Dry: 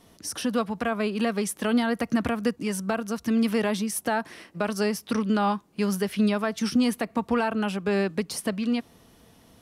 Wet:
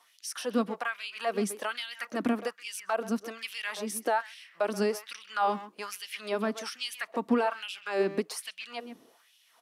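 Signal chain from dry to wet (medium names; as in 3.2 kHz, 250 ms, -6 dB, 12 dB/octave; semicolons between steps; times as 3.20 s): speakerphone echo 130 ms, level -11 dB; LFO high-pass sine 1.2 Hz 240–3100 Hz; trim -5.5 dB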